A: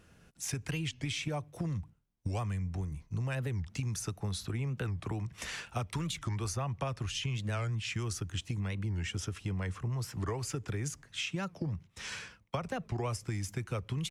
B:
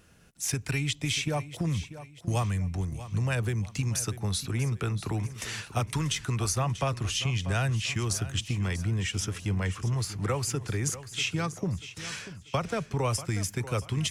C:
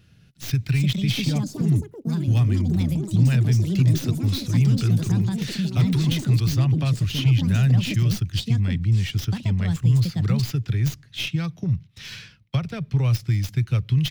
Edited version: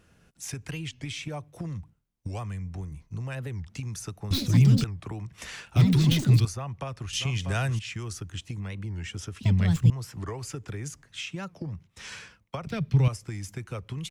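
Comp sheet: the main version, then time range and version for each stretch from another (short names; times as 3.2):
A
4.31–4.84 from C
5.76–6.45 from C
7.13–7.79 from B
9.41–9.9 from C
12.67–13.08 from C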